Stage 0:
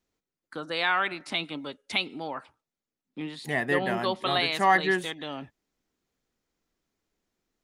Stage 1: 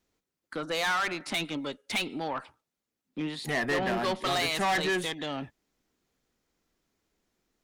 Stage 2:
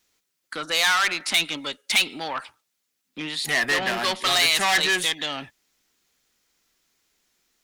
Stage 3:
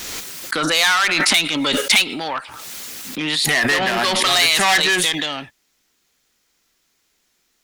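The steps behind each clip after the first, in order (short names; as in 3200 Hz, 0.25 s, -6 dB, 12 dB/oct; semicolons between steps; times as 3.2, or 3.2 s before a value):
tube stage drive 28 dB, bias 0.2; gain +4 dB
tilt shelf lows -8 dB, about 1100 Hz; gain +5 dB
backwards sustainer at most 20 dB/s; gain +4 dB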